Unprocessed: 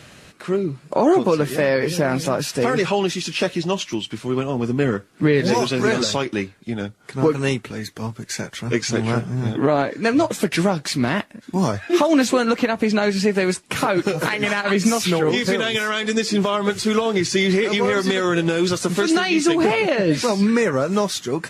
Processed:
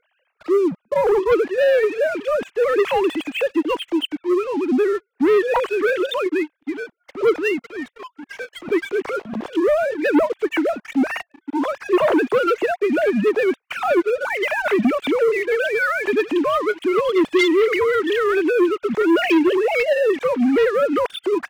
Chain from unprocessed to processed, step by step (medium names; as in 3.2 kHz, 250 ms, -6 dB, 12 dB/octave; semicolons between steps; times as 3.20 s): formants replaced by sine waves; waveshaping leveller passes 3; trim -8 dB